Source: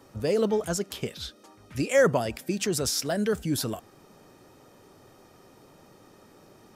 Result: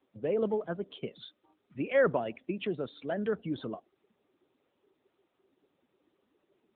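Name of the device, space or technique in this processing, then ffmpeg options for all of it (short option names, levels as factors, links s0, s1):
mobile call with aggressive noise cancelling: -af "highpass=180,afftdn=nr=18:nf=-40,volume=0.631" -ar 8000 -c:a libopencore_amrnb -b:a 10200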